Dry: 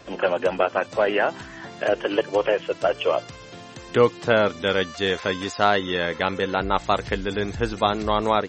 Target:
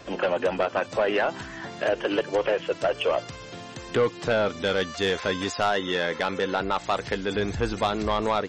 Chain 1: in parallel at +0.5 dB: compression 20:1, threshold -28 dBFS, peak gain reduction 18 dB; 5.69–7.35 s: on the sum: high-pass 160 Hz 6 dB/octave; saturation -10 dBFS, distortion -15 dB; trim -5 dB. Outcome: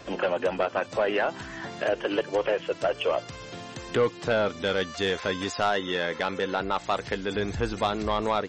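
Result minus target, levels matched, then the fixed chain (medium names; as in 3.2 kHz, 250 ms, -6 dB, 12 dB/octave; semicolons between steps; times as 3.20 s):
compression: peak gain reduction +7.5 dB
in parallel at +0.5 dB: compression 20:1, threshold -20 dBFS, peak gain reduction 10.5 dB; 5.69–7.35 s: on the sum: high-pass 160 Hz 6 dB/octave; saturation -10 dBFS, distortion -13 dB; trim -5 dB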